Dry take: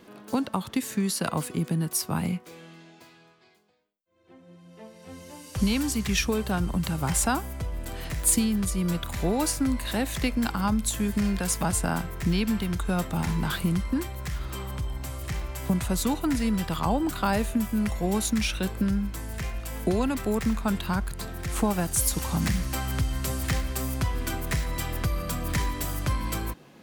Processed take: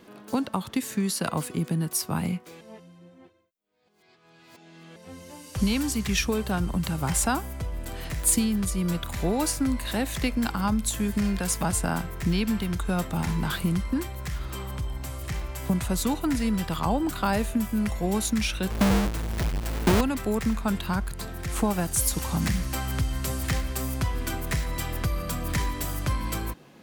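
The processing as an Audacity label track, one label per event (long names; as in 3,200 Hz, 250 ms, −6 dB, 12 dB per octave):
2.610000	4.960000	reverse
18.700000	20.010000	each half-wave held at its own peak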